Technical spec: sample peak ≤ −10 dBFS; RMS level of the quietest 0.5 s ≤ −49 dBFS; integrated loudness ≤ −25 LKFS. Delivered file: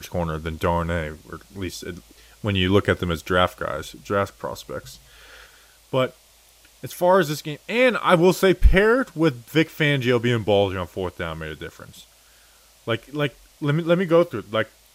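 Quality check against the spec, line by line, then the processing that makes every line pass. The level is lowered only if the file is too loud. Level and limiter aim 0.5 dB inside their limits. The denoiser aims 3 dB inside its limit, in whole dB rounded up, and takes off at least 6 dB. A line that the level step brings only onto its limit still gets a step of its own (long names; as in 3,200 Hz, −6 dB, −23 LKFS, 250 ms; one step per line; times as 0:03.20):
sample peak −3.0 dBFS: out of spec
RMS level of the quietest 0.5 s −54 dBFS: in spec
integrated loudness −22.0 LKFS: out of spec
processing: level −3.5 dB
brickwall limiter −10.5 dBFS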